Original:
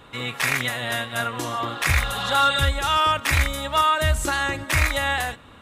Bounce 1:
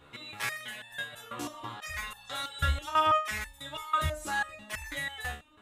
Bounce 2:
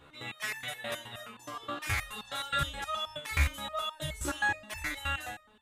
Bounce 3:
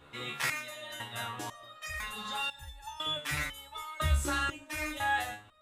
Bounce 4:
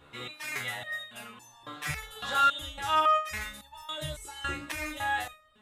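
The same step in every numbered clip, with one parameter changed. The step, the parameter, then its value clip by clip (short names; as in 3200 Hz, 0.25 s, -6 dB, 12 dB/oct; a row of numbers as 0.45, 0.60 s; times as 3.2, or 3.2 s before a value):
stepped resonator, rate: 6.1, 9.5, 2, 3.6 Hz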